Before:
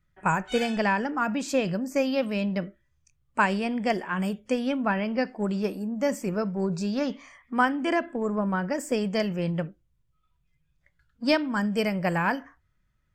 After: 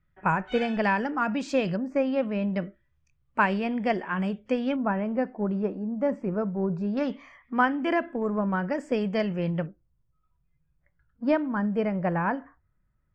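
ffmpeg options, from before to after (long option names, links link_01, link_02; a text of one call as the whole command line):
ffmpeg -i in.wav -af "asetnsamples=nb_out_samples=441:pad=0,asendcmd='0.84 lowpass f 4600;1.76 lowpass f 1900;2.54 lowpass f 3100;4.76 lowpass f 1300;6.97 lowpass f 3100;9.66 lowpass f 1400',lowpass=2700" out.wav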